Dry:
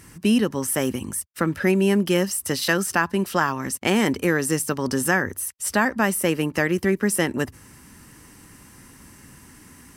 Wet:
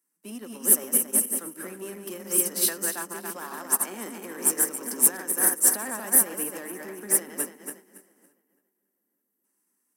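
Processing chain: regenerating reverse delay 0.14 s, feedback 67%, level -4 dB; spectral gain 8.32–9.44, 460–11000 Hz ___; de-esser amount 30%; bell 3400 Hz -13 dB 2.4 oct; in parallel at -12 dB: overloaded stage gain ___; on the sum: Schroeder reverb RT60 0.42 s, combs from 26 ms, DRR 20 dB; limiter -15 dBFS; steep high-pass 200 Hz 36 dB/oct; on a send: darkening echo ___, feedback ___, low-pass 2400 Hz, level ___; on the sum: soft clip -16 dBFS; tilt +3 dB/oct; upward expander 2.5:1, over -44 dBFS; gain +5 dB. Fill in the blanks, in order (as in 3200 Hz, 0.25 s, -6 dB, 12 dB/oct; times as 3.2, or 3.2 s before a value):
-10 dB, 25.5 dB, 0.892 s, 27%, -12 dB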